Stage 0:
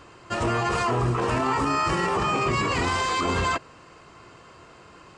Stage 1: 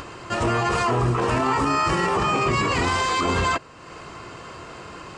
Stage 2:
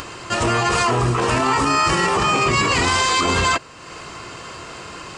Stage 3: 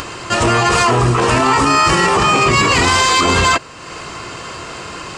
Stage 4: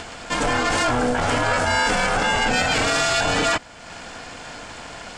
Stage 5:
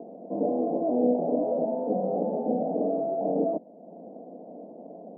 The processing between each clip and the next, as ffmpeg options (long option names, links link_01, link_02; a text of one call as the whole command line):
ffmpeg -i in.wav -af "acompressor=mode=upward:threshold=-32dB:ratio=2.5,volume=2.5dB" out.wav
ffmpeg -i in.wav -af "highshelf=frequency=2400:gain=8.5,volume=2dB" out.wav
ffmpeg -i in.wav -af "acontrast=48" out.wav
ffmpeg -i in.wav -af "aeval=exprs='val(0)*sin(2*PI*370*n/s)':channel_layout=same,volume=-4.5dB" out.wav
ffmpeg -i in.wav -af "asuperpass=centerf=350:order=12:qfactor=0.7" out.wav